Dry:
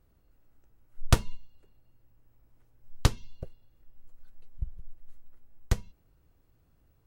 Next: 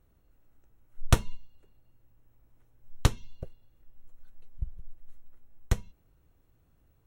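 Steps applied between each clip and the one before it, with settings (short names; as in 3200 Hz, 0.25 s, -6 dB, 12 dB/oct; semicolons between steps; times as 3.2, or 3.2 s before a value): notch 4800 Hz, Q 5.9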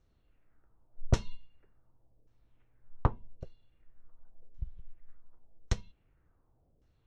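LFO low-pass saw down 0.88 Hz 470–5800 Hz; gain -4.5 dB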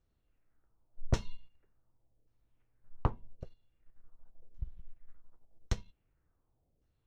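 sample leveller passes 1; gain -5 dB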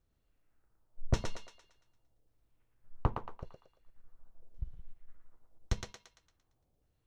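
thinning echo 0.114 s, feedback 46%, high-pass 440 Hz, level -3 dB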